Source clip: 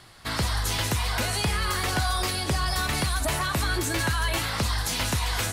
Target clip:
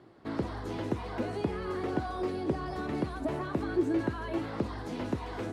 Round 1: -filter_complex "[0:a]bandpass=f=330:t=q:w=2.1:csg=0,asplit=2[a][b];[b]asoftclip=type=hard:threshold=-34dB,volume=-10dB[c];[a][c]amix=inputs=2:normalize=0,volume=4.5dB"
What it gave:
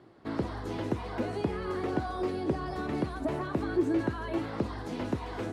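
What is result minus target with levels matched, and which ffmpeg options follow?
hard clip: distortion -6 dB
-filter_complex "[0:a]bandpass=f=330:t=q:w=2.1:csg=0,asplit=2[a][b];[b]asoftclip=type=hard:threshold=-44dB,volume=-10dB[c];[a][c]amix=inputs=2:normalize=0,volume=4.5dB"

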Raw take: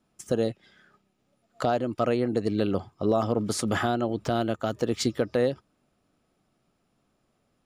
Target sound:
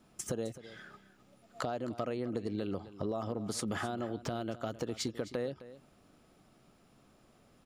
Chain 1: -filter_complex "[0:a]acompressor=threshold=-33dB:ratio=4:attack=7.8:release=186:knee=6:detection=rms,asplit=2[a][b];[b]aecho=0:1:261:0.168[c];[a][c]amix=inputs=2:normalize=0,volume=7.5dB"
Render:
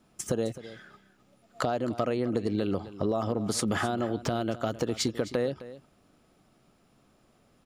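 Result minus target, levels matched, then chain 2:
compressor: peak gain reduction -7.5 dB
-filter_complex "[0:a]acompressor=threshold=-43dB:ratio=4:attack=7.8:release=186:knee=6:detection=rms,asplit=2[a][b];[b]aecho=0:1:261:0.168[c];[a][c]amix=inputs=2:normalize=0,volume=7.5dB"

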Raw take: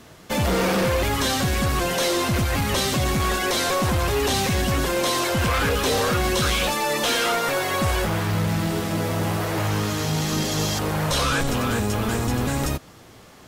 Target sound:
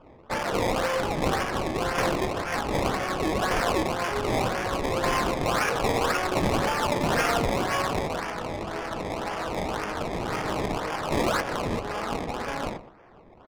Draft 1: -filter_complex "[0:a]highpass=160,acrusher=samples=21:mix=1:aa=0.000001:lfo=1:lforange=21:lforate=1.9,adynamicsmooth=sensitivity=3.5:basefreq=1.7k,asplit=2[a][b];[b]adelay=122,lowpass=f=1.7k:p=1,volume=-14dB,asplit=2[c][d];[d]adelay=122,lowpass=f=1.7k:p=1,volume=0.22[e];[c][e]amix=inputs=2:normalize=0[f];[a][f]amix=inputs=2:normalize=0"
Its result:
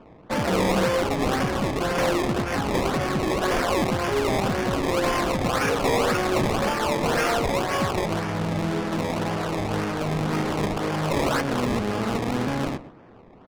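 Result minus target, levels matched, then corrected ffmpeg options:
125 Hz band +2.5 dB
-filter_complex "[0:a]highpass=610,acrusher=samples=21:mix=1:aa=0.000001:lfo=1:lforange=21:lforate=1.9,adynamicsmooth=sensitivity=3.5:basefreq=1.7k,asplit=2[a][b];[b]adelay=122,lowpass=f=1.7k:p=1,volume=-14dB,asplit=2[c][d];[d]adelay=122,lowpass=f=1.7k:p=1,volume=0.22[e];[c][e]amix=inputs=2:normalize=0[f];[a][f]amix=inputs=2:normalize=0"

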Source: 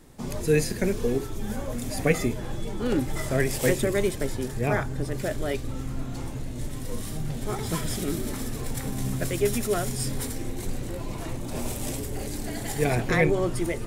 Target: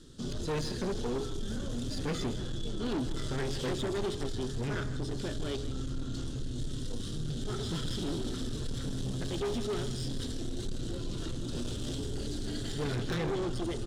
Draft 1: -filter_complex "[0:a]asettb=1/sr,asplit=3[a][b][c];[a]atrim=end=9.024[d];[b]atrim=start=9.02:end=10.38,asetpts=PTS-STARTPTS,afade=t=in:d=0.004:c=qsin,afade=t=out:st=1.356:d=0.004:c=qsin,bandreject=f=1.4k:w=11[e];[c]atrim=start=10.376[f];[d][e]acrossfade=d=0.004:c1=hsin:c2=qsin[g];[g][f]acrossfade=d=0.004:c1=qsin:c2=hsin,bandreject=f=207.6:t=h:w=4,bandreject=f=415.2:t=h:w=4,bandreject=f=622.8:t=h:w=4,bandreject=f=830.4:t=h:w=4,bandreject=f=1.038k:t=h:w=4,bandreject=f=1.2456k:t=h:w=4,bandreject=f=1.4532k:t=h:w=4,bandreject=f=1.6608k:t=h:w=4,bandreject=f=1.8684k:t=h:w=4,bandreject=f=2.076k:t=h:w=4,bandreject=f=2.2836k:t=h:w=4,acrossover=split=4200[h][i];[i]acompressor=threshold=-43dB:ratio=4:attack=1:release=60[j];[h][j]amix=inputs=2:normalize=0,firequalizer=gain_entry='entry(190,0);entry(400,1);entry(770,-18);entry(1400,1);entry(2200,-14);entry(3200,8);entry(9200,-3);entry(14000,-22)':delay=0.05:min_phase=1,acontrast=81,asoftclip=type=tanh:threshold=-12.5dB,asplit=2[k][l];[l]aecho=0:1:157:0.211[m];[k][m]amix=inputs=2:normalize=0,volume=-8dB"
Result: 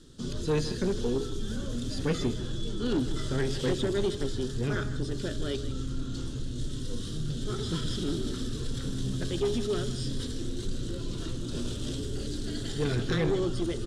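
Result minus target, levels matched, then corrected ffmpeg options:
soft clip: distortion -8 dB
-filter_complex "[0:a]asettb=1/sr,asplit=3[a][b][c];[a]atrim=end=9.024[d];[b]atrim=start=9.02:end=10.38,asetpts=PTS-STARTPTS,afade=t=in:d=0.004:c=qsin,afade=t=out:st=1.356:d=0.004:c=qsin,bandreject=f=1.4k:w=11[e];[c]atrim=start=10.376[f];[d][e]acrossfade=d=0.004:c1=hsin:c2=qsin[g];[g][f]acrossfade=d=0.004:c1=qsin:c2=hsin,bandreject=f=207.6:t=h:w=4,bandreject=f=415.2:t=h:w=4,bandreject=f=622.8:t=h:w=4,bandreject=f=830.4:t=h:w=4,bandreject=f=1.038k:t=h:w=4,bandreject=f=1.2456k:t=h:w=4,bandreject=f=1.4532k:t=h:w=4,bandreject=f=1.6608k:t=h:w=4,bandreject=f=1.8684k:t=h:w=4,bandreject=f=2.076k:t=h:w=4,bandreject=f=2.2836k:t=h:w=4,acrossover=split=4200[h][i];[i]acompressor=threshold=-43dB:ratio=4:attack=1:release=60[j];[h][j]amix=inputs=2:normalize=0,firequalizer=gain_entry='entry(190,0);entry(400,1);entry(770,-18);entry(1400,1);entry(2200,-14);entry(3200,8);entry(9200,-3);entry(14000,-22)':delay=0.05:min_phase=1,acontrast=81,asoftclip=type=tanh:threshold=-21.5dB,asplit=2[k][l];[l]aecho=0:1:157:0.211[m];[k][m]amix=inputs=2:normalize=0,volume=-8dB"

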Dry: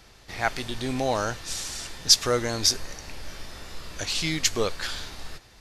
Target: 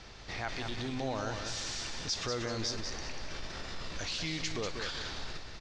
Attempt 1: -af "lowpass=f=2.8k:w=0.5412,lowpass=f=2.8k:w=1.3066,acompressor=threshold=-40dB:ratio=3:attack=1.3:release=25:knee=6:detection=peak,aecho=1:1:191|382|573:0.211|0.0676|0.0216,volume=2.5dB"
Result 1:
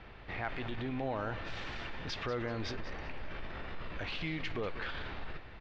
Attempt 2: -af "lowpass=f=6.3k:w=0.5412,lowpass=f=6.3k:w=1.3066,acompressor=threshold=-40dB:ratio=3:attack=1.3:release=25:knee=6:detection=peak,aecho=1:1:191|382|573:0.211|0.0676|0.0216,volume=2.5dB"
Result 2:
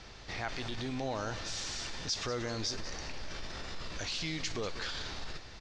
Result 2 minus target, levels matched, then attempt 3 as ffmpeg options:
echo-to-direct -7 dB
-af "lowpass=f=6.3k:w=0.5412,lowpass=f=6.3k:w=1.3066,acompressor=threshold=-40dB:ratio=3:attack=1.3:release=25:knee=6:detection=peak,aecho=1:1:191|382|573|764:0.473|0.151|0.0485|0.0155,volume=2.5dB"

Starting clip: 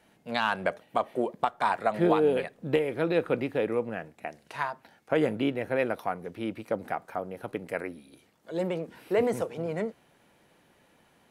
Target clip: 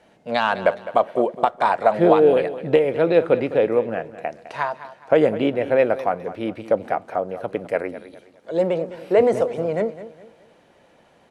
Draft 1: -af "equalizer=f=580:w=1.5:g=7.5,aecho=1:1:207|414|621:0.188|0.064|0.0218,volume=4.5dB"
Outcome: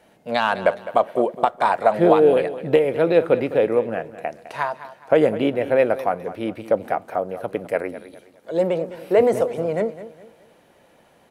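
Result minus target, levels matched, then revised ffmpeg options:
8000 Hz band +4.0 dB
-af "lowpass=7.7k,equalizer=f=580:w=1.5:g=7.5,aecho=1:1:207|414|621:0.188|0.064|0.0218,volume=4.5dB"

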